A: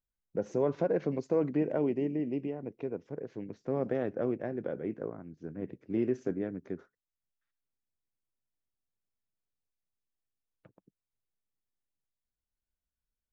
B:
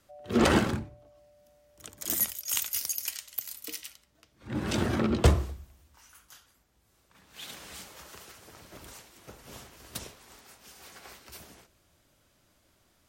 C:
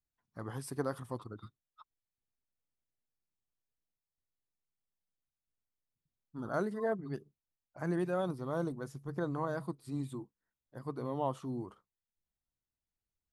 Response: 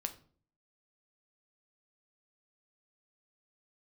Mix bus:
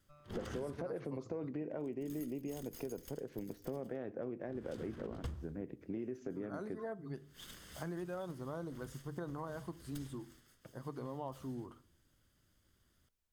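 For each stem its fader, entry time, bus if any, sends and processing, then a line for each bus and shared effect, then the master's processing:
+0.5 dB, 0.00 s, bus A, send −7 dB, no processing
−8.0 dB, 0.00 s, no bus, no send, lower of the sound and its delayed copy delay 0.62 ms; low-shelf EQ 150 Hz +7.5 dB; automatic ducking −8 dB, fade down 0.50 s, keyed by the first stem
−4.5 dB, 0.00 s, bus A, send −5.5 dB, no processing
bus A: 0.0 dB, brickwall limiter −25.5 dBFS, peak gain reduction 8 dB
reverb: on, RT60 0.50 s, pre-delay 8 ms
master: downward compressor 4 to 1, threshold −40 dBFS, peak gain reduction 13.5 dB

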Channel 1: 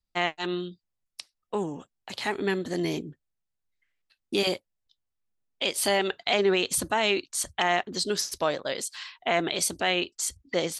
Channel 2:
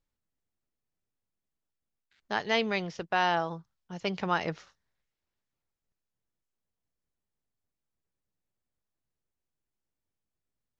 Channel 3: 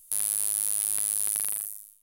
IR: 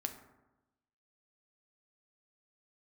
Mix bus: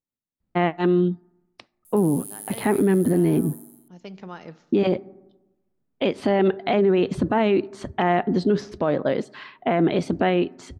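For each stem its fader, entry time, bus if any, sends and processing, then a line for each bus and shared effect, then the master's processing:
+2.5 dB, 0.40 s, no bus, send −16 dB, low-pass filter 2,000 Hz 12 dB per octave
−16.5 dB, 0.00 s, bus A, send −6 dB, low-shelf EQ 220 Hz −9 dB
−1.0 dB, 1.85 s, bus A, send −13 dB, notch filter 5,700 Hz, Q 8.8; tuned comb filter 240 Hz, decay 1.2 s, mix 70%
bus A: 0.0 dB, high-shelf EQ 5,900 Hz +11.5 dB; downward compressor 2 to 1, threshold −43 dBFS, peak gain reduction 11 dB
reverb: on, RT60 1.0 s, pre-delay 4 ms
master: parametric band 190 Hz +14.5 dB 2.9 octaves; brickwall limiter −11.5 dBFS, peak gain reduction 10 dB

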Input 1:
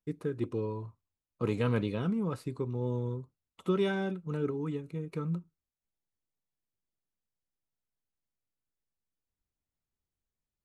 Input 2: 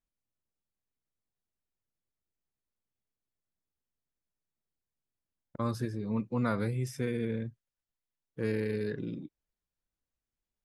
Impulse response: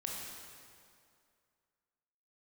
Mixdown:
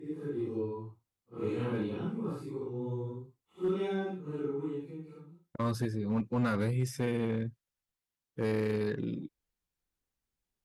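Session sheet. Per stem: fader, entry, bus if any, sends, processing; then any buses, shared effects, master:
−6.0 dB, 0.00 s, no send, random phases in long frames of 200 ms; hollow resonant body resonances 340/780 Hz, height 8 dB, ringing for 25 ms; automatic ducking −24 dB, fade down 0.65 s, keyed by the second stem
+2.0 dB, 0.00 s, no send, no processing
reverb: not used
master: notch filter 630 Hz, Q 12; asymmetric clip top −25 dBFS

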